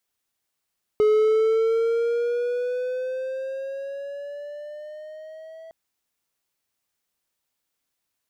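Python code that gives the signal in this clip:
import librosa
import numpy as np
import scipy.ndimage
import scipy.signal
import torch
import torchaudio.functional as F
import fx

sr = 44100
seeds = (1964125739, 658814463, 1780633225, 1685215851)

y = fx.riser_tone(sr, length_s=4.71, level_db=-12.5, wave='triangle', hz=424.0, rise_st=7.5, swell_db=-25.0)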